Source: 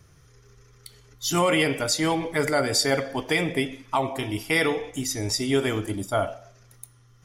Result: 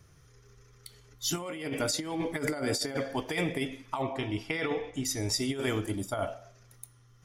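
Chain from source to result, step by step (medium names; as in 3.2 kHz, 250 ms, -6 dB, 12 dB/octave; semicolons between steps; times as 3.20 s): 1.37–3.03 s: peaking EQ 270 Hz +5.5 dB 0.98 oct; 4.02–5.05 s: Bessel low-pass 4 kHz, order 2; compressor with a negative ratio -24 dBFS, ratio -0.5; trim -6 dB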